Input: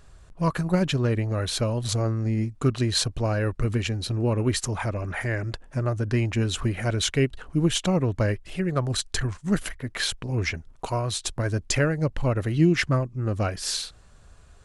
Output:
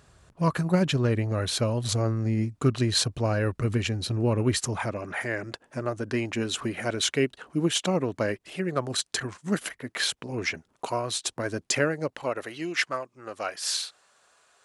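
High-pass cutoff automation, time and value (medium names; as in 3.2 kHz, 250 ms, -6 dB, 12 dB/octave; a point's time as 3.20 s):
4.60 s 87 Hz
5.08 s 220 Hz
11.80 s 220 Hz
12.60 s 640 Hz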